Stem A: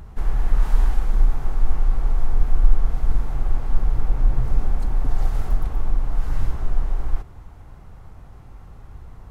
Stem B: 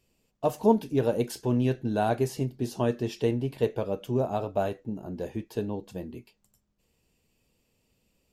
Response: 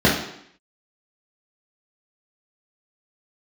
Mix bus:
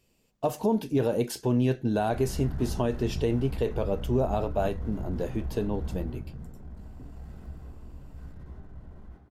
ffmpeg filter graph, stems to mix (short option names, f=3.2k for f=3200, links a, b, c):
-filter_complex "[0:a]asoftclip=type=hard:threshold=-17.5dB,adelay=1950,volume=-15dB,afade=t=out:st=5.92:d=0.34:silence=0.354813,asplit=2[a][b];[b]volume=-16.5dB[c];[1:a]volume=2.5dB[d];[2:a]atrim=start_sample=2205[e];[c][e]afir=irnorm=-1:irlink=0[f];[a][d][f]amix=inputs=3:normalize=0,alimiter=limit=-16dB:level=0:latency=1:release=41"